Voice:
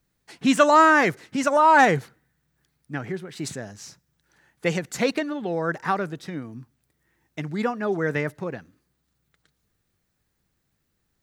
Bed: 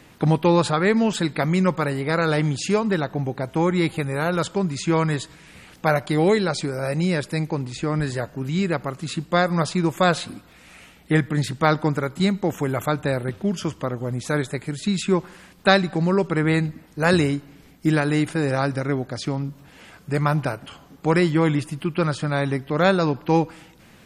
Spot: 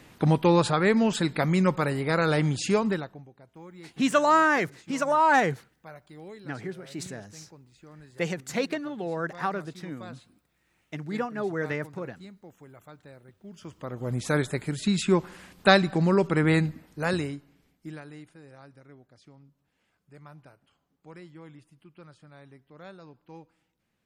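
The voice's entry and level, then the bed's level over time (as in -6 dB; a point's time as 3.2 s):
3.55 s, -5.0 dB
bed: 2.88 s -3 dB
3.3 s -26 dB
13.36 s -26 dB
14.14 s -2 dB
16.62 s -2 dB
18.41 s -28 dB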